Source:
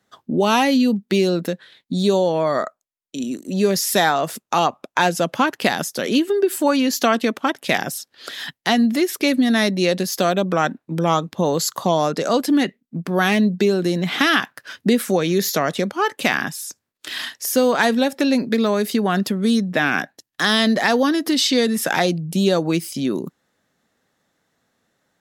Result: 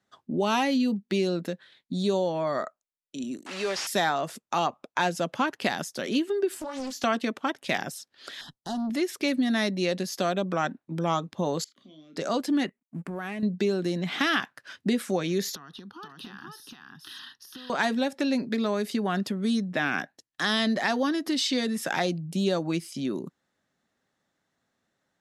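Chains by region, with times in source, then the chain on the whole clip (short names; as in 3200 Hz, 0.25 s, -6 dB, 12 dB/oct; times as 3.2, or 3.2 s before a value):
3.46–3.87 delta modulation 64 kbps, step -25 dBFS + weighting filter A + overdrive pedal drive 12 dB, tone 3400 Hz, clips at -10 dBFS
6.54–7.04 compressor 4:1, threshold -25 dBFS + doubler 19 ms -5.5 dB + Doppler distortion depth 0.69 ms
8.41–8.9 low shelf 95 Hz +10 dB + tube stage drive 19 dB, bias 0.3 + Butterworth band-stop 2200 Hz, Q 1
11.64–12.16 vowel filter i + compressor 2:1, threshold -46 dBFS + doubler 32 ms -6.5 dB
12.66–13.43 G.711 law mismatch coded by A + band shelf 4500 Hz -9 dB 1.2 oct + compressor 10:1, threshold -21 dBFS
15.55–17.7 compressor 10:1, threshold -28 dBFS + fixed phaser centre 2200 Hz, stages 6 + echo 0.479 s -3 dB
whole clip: Bessel low-pass 9200 Hz, order 8; notch 470 Hz, Q 12; gain -8 dB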